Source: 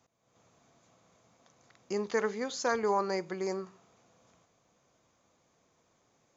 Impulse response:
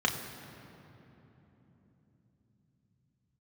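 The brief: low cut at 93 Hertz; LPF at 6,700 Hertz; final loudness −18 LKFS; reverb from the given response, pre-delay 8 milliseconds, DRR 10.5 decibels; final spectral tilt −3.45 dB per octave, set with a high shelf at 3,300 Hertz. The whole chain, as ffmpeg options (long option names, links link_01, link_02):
-filter_complex "[0:a]highpass=93,lowpass=6700,highshelf=frequency=3300:gain=6.5,asplit=2[link_01][link_02];[1:a]atrim=start_sample=2205,adelay=8[link_03];[link_02][link_03]afir=irnorm=-1:irlink=0,volume=-21dB[link_04];[link_01][link_04]amix=inputs=2:normalize=0,volume=14dB"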